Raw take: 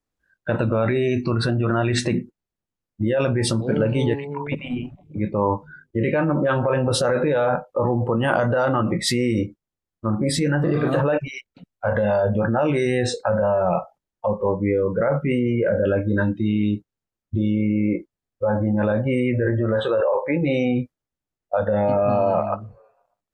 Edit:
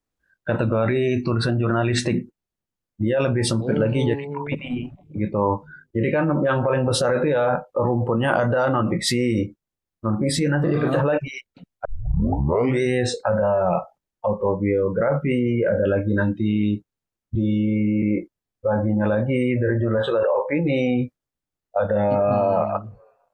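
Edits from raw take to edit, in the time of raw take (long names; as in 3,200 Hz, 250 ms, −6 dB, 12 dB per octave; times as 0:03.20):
0:11.85: tape start 0.96 s
0:17.35–0:17.80: time-stretch 1.5×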